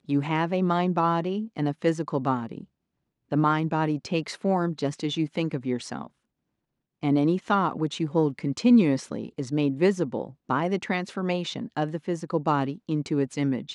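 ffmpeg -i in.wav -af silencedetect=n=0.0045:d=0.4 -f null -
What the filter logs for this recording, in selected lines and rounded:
silence_start: 2.65
silence_end: 3.31 | silence_duration: 0.67
silence_start: 6.08
silence_end: 7.03 | silence_duration: 0.95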